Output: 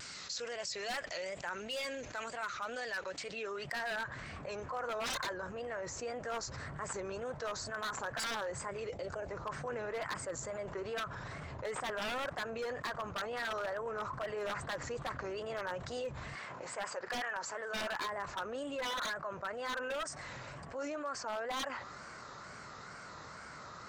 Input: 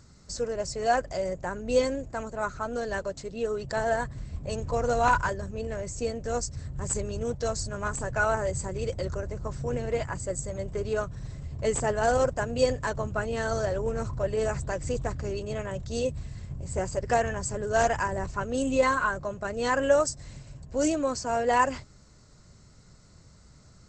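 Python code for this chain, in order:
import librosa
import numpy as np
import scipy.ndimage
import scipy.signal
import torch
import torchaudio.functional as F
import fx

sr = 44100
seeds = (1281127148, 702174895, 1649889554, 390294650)

y = fx.weighting(x, sr, curve='A', at=(16.35, 18.06))
y = fx.filter_sweep_bandpass(y, sr, from_hz=2800.0, to_hz=1300.0, start_s=2.56, end_s=4.86, q=1.4)
y = fx.dynamic_eq(y, sr, hz=1300.0, q=0.74, threshold_db=-42.0, ratio=4.0, max_db=3)
y = fx.rider(y, sr, range_db=4, speed_s=2.0)
y = fx.clip_hard(y, sr, threshold_db=-31.5, at=(1.54, 2.19))
y = fx.spec_box(y, sr, start_s=8.89, length_s=0.41, low_hz=900.0, high_hz=2100.0, gain_db=-9)
y = 10.0 ** (-26.5 / 20.0) * (np.abs((y / 10.0 ** (-26.5 / 20.0) + 3.0) % 4.0 - 2.0) - 1.0)
y = fx.wow_flutter(y, sr, seeds[0], rate_hz=2.1, depth_cents=120.0)
y = fx.env_flatten(y, sr, amount_pct=70)
y = y * 10.0 ** (-6.5 / 20.0)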